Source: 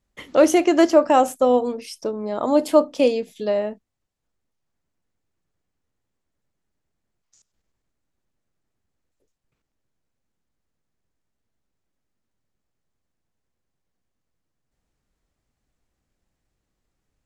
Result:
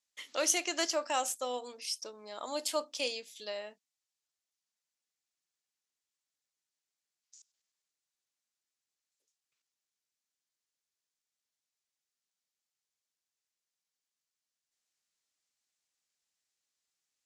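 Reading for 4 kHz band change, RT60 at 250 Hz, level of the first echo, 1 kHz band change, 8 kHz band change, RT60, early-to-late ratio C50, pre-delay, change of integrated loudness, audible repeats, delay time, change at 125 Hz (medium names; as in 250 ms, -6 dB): -1.5 dB, no reverb, no echo, -15.5 dB, +1.0 dB, no reverb, no reverb, no reverb, -15.0 dB, no echo, no echo, no reading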